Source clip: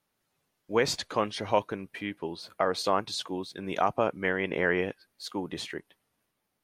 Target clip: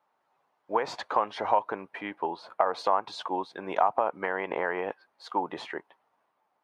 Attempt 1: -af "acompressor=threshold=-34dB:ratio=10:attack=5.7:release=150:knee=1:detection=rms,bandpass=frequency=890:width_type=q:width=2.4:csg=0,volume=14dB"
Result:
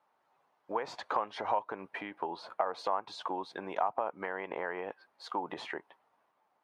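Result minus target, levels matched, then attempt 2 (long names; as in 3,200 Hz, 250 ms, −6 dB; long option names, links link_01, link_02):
downward compressor: peak gain reduction +7 dB
-af "acompressor=threshold=-26dB:ratio=10:attack=5.7:release=150:knee=1:detection=rms,bandpass=frequency=890:width_type=q:width=2.4:csg=0,volume=14dB"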